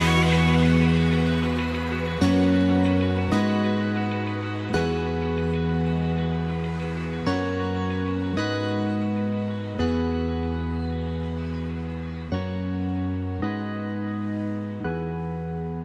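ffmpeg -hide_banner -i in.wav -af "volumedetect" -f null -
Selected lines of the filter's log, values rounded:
mean_volume: -24.0 dB
max_volume: -7.8 dB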